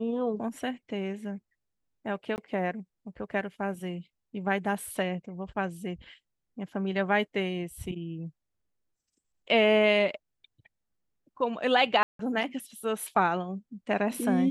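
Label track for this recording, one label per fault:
2.360000	2.380000	drop-out 19 ms
12.030000	12.190000	drop-out 163 ms

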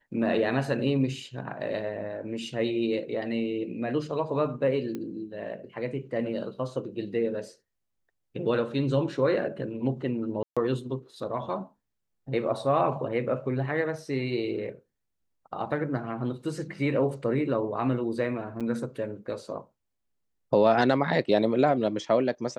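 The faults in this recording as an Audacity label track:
4.950000	4.950000	click −22 dBFS
10.430000	10.570000	drop-out 136 ms
18.600000	18.610000	drop-out 6.7 ms

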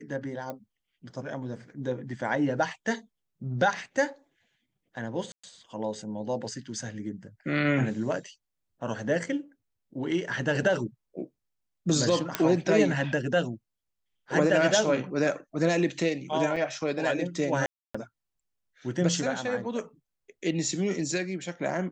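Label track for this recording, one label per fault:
0.500000	0.500000	click −22 dBFS
5.320000	5.430000	drop-out 115 ms
12.350000	12.350000	click −9 dBFS
16.560000	16.560000	drop-out 4.8 ms
17.660000	17.950000	drop-out 285 ms

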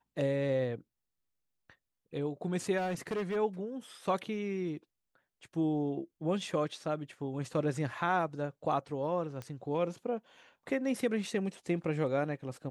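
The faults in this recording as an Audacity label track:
2.770000	3.370000	clipping −30.5 dBFS
9.420000	9.420000	click −27 dBFS

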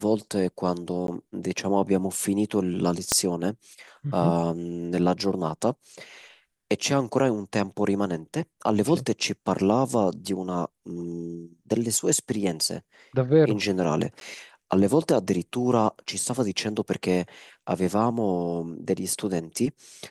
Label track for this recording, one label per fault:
1.070000	1.080000	drop-out 12 ms
3.120000	3.120000	click −5 dBFS
14.200000	14.210000	drop-out 12 ms

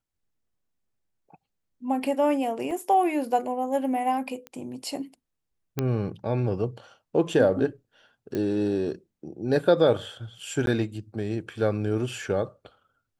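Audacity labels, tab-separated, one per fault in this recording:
2.710000	2.710000	drop-out 2.1 ms
4.470000	4.470000	click −24 dBFS
5.790000	5.790000	click −12 dBFS
8.350000	8.350000	click −18 dBFS
10.660000	10.670000	drop-out 12 ms

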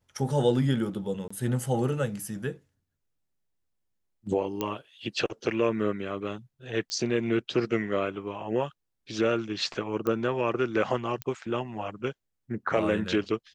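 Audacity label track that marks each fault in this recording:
1.280000	1.300000	drop-out 25 ms
4.610000	4.610000	click −15 dBFS
6.900000	6.900000	click −19 dBFS
10.070000	10.070000	click −17 dBFS
11.220000	11.220000	click −17 dBFS

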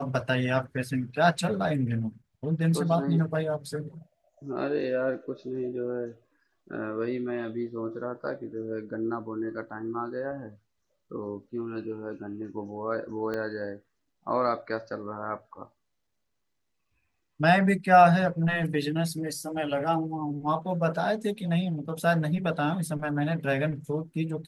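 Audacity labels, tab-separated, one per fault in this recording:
13.340000	13.340000	click −21 dBFS

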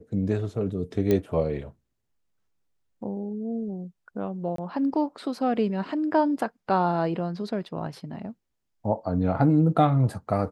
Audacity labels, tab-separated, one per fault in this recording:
1.110000	1.110000	click −12 dBFS
4.560000	4.580000	drop-out 23 ms

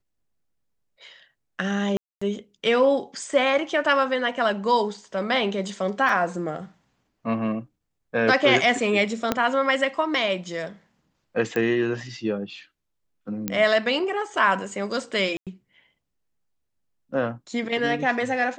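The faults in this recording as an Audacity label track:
1.970000	2.210000	drop-out 245 ms
6.090000	6.090000	drop-out 3 ms
9.320000	9.320000	click −7 dBFS
11.560000	11.560000	click −14 dBFS
13.480000	13.480000	click −10 dBFS
15.370000	15.470000	drop-out 97 ms

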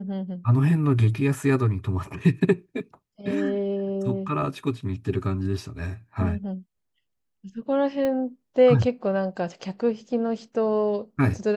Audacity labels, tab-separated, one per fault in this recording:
8.050000	8.050000	click −15 dBFS

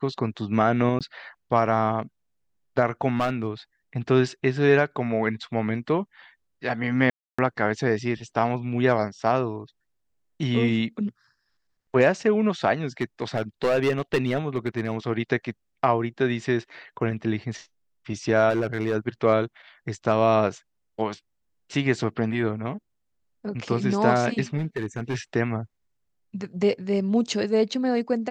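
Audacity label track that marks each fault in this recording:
0.990000	1.010000	drop-out 17 ms
3.160000	3.470000	clipping −18.5 dBFS
7.100000	7.380000	drop-out 285 ms
13.010000	14.940000	clipping −17 dBFS
18.490000	18.950000	clipping −19 dBFS
24.570000	25.170000	clipping −22.5 dBFS

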